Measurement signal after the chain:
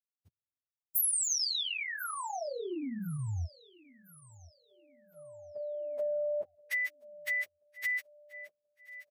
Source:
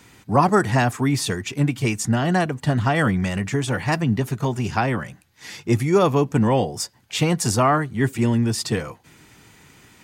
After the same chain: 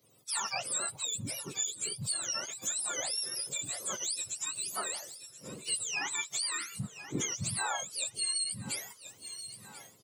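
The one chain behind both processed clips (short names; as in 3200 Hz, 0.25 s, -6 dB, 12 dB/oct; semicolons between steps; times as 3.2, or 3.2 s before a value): spectrum mirrored in octaves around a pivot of 1000 Hz; RIAA curve recording; feedback echo 1.03 s, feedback 47%, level -19.5 dB; compressor 3:1, threshold -32 dBFS; three-band expander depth 70%; gain -5 dB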